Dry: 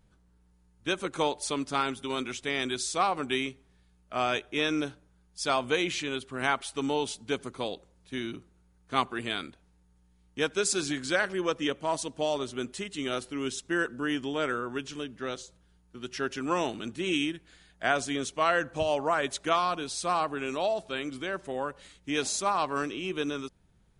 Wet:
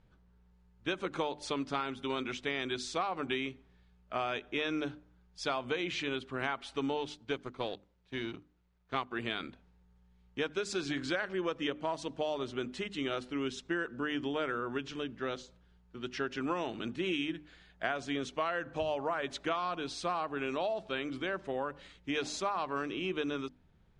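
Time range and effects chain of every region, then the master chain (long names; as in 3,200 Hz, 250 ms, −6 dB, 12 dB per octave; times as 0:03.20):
0:06.97–0:09.11: mu-law and A-law mismatch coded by A + low-pass filter 9,200 Hz + parametric band 230 Hz −4 dB 0.37 octaves
whole clip: low-pass filter 3,900 Hz 12 dB per octave; mains-hum notches 50/100/150/200/250/300 Hz; downward compressor, threshold −30 dBFS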